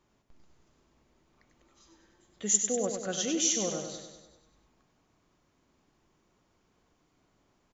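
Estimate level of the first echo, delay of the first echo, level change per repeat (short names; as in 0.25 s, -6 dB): -6.5 dB, 98 ms, -5.0 dB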